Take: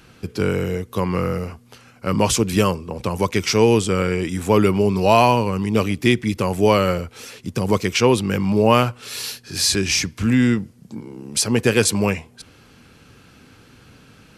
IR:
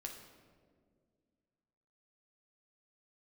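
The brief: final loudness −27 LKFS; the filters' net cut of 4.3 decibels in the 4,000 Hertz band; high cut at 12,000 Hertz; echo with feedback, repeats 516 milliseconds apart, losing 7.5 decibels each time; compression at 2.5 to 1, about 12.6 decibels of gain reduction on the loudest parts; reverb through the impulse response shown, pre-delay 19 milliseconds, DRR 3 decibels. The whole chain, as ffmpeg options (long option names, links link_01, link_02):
-filter_complex "[0:a]lowpass=12000,equalizer=frequency=4000:width_type=o:gain=-6,acompressor=threshold=-30dB:ratio=2.5,aecho=1:1:516|1032|1548|2064|2580:0.422|0.177|0.0744|0.0312|0.0131,asplit=2[link_01][link_02];[1:a]atrim=start_sample=2205,adelay=19[link_03];[link_02][link_03]afir=irnorm=-1:irlink=0,volume=0dB[link_04];[link_01][link_04]amix=inputs=2:normalize=0,volume=0.5dB"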